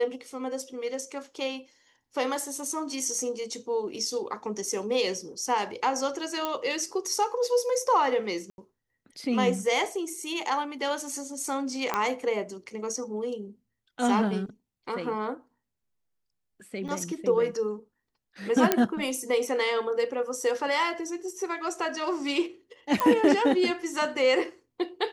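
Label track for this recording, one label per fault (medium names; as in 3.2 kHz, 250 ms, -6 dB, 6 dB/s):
6.450000	6.450000	pop -14 dBFS
8.500000	8.580000	dropout 81 ms
11.940000	11.940000	pop -12 dBFS
16.880000	16.890000	dropout 5.4 ms
18.720000	18.720000	pop -5 dBFS
23.000000	23.000000	pop -11 dBFS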